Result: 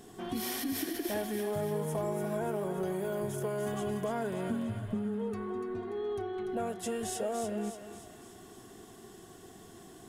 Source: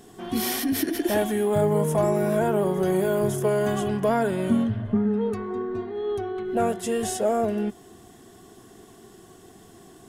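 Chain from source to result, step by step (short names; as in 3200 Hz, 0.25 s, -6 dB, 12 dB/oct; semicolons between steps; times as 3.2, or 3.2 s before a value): compressor 2.5:1, threshold -32 dBFS, peak gain reduction 10.5 dB; thinning echo 0.291 s, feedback 53%, high-pass 720 Hz, level -6 dB; gain -3 dB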